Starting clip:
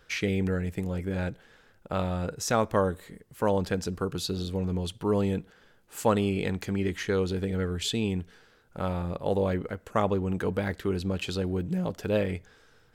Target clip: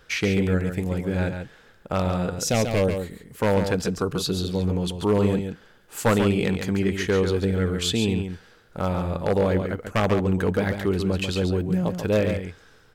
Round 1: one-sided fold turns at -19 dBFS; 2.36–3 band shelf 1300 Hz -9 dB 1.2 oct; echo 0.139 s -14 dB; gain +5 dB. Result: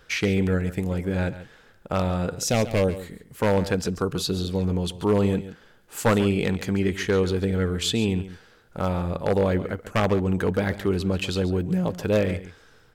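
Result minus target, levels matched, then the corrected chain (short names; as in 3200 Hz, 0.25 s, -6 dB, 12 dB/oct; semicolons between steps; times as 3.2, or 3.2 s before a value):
echo-to-direct -7 dB
one-sided fold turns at -19 dBFS; 2.36–3 band shelf 1300 Hz -9 dB 1.2 oct; echo 0.139 s -7 dB; gain +5 dB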